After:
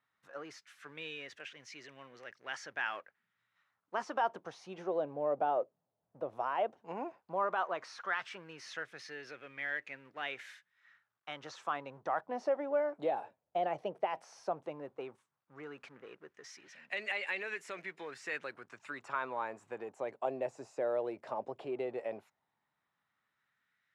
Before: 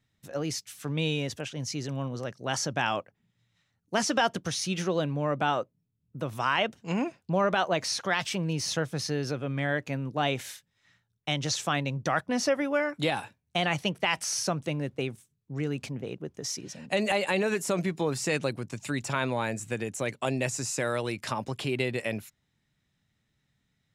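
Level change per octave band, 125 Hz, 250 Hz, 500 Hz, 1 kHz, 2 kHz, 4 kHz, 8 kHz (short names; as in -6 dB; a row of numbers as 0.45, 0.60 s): -26.0, -16.5, -6.5, -5.5, -8.5, -17.0, -24.0 dB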